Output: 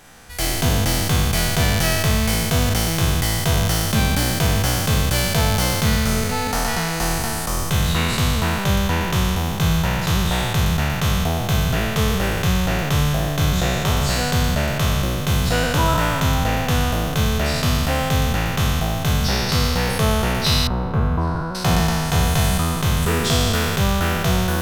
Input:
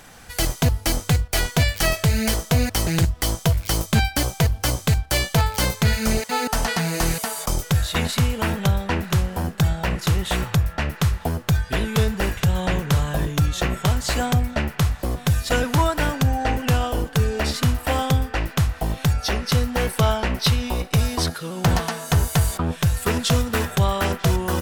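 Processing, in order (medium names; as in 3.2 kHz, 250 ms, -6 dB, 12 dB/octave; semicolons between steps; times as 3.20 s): spectral sustain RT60 2.82 s; 20.67–21.55 s: FFT filter 1.4 kHz 0 dB, 2.1 kHz -14 dB, 5.8 kHz -29 dB; trim -3.5 dB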